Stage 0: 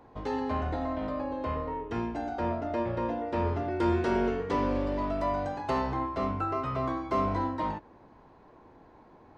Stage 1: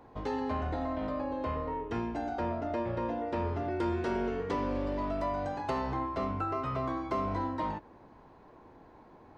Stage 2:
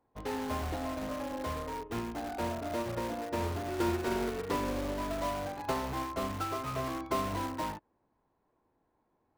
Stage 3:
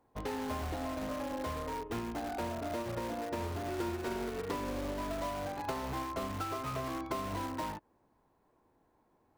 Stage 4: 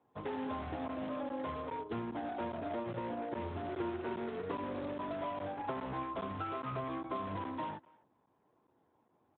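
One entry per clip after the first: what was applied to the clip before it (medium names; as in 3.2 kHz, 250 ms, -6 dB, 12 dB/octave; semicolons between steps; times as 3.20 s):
compression 2.5:1, threshold -30 dBFS, peak gain reduction 6 dB
in parallel at -7.5 dB: integer overflow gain 30.5 dB; on the sum: upward expansion 2.5:1, over -46 dBFS; trim +2 dB
compression 3:1, threshold -41 dBFS, peak gain reduction 11 dB; trim +4.5 dB
speakerphone echo 250 ms, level -24 dB; crackling interface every 0.41 s, samples 512, zero, from 0.88 s; trim -1.5 dB; Speex 11 kbps 8 kHz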